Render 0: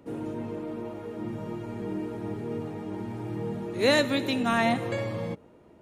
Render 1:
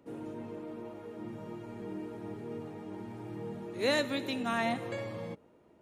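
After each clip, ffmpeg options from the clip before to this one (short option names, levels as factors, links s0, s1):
-af "lowshelf=f=130:g=-6,volume=0.473"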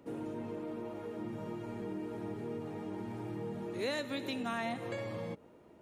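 -af "acompressor=threshold=0.00891:ratio=2.5,volume=1.5"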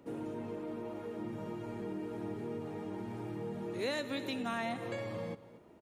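-af "aecho=1:1:236:0.133"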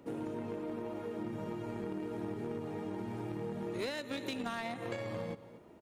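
-filter_complex "[0:a]asplit=2[s0][s1];[s1]acrusher=bits=4:mix=0:aa=0.5,volume=0.596[s2];[s0][s2]amix=inputs=2:normalize=0,acompressor=threshold=0.0158:ratio=6,volume=1.26"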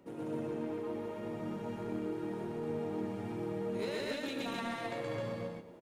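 -af "flanger=delay=5.3:depth=6:regen=64:speed=0.44:shape=sinusoidal,aecho=1:1:122.4|195.3|259.5:1|0.562|0.891"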